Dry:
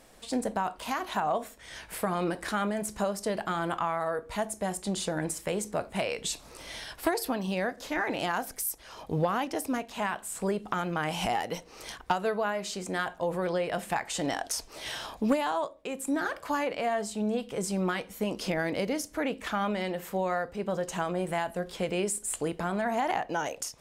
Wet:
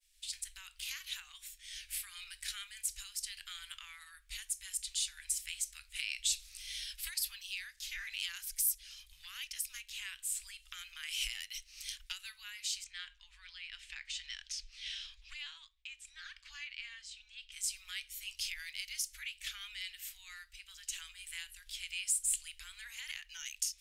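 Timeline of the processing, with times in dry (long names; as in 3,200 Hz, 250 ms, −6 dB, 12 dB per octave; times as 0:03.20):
0:12.84–0:17.52: high-frequency loss of the air 140 metres
whole clip: downward expander −48 dBFS; inverse Chebyshev band-stop filter 180–590 Hz, stop band 80 dB; level +1 dB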